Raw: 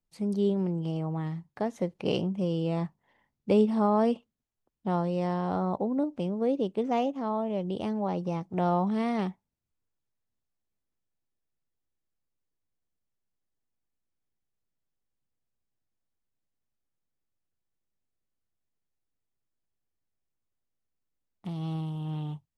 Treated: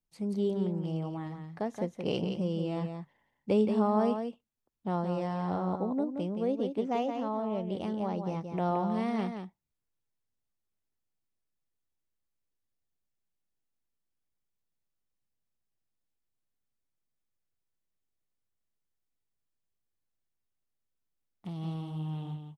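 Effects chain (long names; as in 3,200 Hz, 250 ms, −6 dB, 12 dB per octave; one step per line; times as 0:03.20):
single-tap delay 173 ms −7 dB
level −3.5 dB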